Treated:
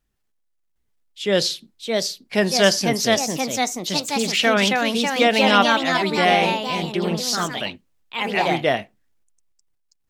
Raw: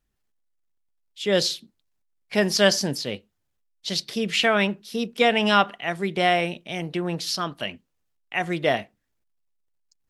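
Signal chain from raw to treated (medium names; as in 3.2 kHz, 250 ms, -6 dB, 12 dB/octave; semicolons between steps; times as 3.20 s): ever faster or slower copies 757 ms, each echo +2 st, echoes 3; trim +2 dB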